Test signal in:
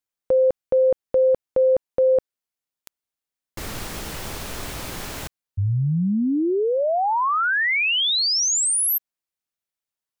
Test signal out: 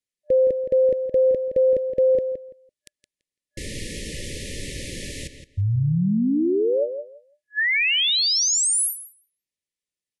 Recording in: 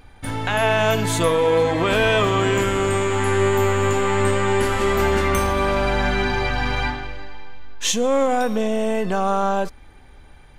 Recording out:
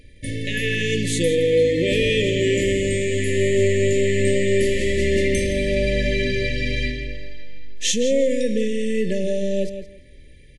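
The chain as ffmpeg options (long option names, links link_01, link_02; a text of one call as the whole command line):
ffmpeg -i in.wav -filter_complex "[0:a]asplit=2[link_01][link_02];[link_02]adelay=168,lowpass=frequency=4700:poles=1,volume=-9dB,asplit=2[link_03][link_04];[link_04]adelay=168,lowpass=frequency=4700:poles=1,volume=0.19,asplit=2[link_05][link_06];[link_06]adelay=168,lowpass=frequency=4700:poles=1,volume=0.19[link_07];[link_01][link_03][link_05][link_07]amix=inputs=4:normalize=0,afftfilt=real='re*(1-between(b*sr/4096,600,1700))':imag='im*(1-between(b*sr/4096,600,1700))':win_size=4096:overlap=0.75" -ar 24000 -c:a aac -b:a 96k out.aac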